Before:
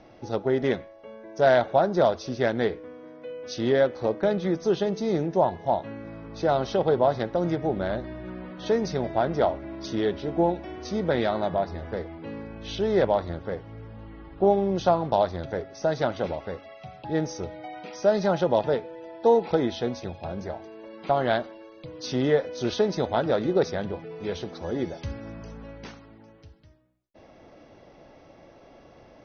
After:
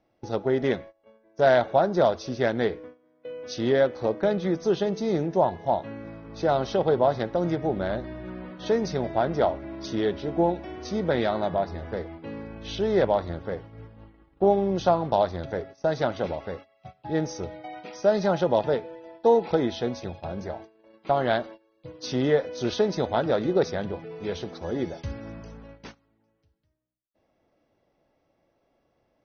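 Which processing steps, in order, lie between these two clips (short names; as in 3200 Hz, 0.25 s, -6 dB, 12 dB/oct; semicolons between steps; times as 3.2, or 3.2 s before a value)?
gate -40 dBFS, range -19 dB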